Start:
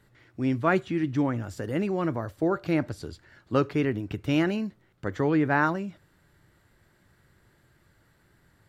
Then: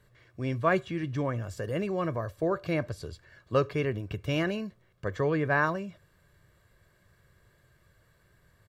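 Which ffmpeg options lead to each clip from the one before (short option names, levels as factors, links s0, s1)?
-af "aecho=1:1:1.8:0.55,volume=0.75"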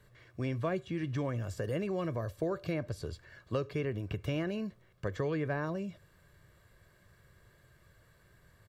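-filter_complex "[0:a]acrossover=split=650|2200[s0][s1][s2];[s0]acompressor=threshold=0.0224:ratio=4[s3];[s1]acompressor=threshold=0.00447:ratio=4[s4];[s2]acompressor=threshold=0.00282:ratio=4[s5];[s3][s4][s5]amix=inputs=3:normalize=0,volume=1.12"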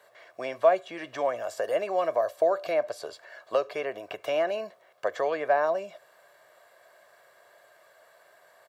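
-af "highpass=f=670:t=q:w=4.3,volume=2"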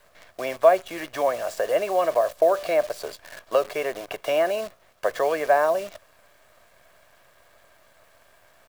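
-af "acrusher=bits=8:dc=4:mix=0:aa=0.000001,volume=1.68"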